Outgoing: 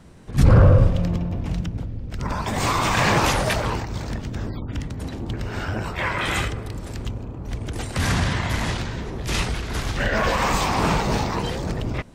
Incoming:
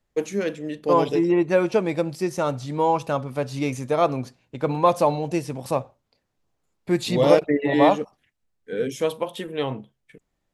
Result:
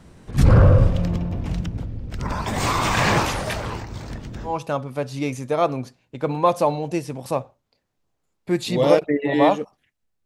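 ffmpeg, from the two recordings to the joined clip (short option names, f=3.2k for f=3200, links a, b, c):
-filter_complex "[0:a]asplit=3[a][b][c];[a]afade=t=out:st=3.22:d=0.02[d];[b]flanger=delay=3.4:depth=8.3:regen=-76:speed=0.43:shape=triangular,afade=t=in:st=3.22:d=0.02,afade=t=out:st=4.59:d=0.02[e];[c]afade=t=in:st=4.59:d=0.02[f];[d][e][f]amix=inputs=3:normalize=0,apad=whole_dur=10.25,atrim=end=10.25,atrim=end=4.59,asetpts=PTS-STARTPTS[g];[1:a]atrim=start=2.83:end=8.65,asetpts=PTS-STARTPTS[h];[g][h]acrossfade=d=0.16:c1=tri:c2=tri"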